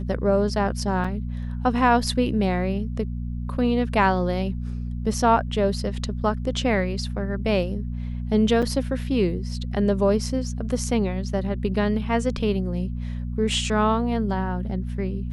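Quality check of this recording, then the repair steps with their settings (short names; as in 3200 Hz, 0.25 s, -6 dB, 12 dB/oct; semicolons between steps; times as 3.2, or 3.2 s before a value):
hum 60 Hz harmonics 4 -29 dBFS
1.04 gap 4.4 ms
8.62–8.63 gap 6.2 ms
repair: de-hum 60 Hz, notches 4; interpolate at 1.04, 4.4 ms; interpolate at 8.62, 6.2 ms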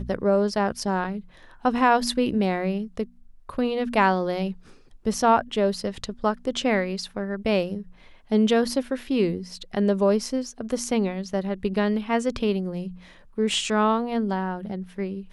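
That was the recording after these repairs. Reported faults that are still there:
none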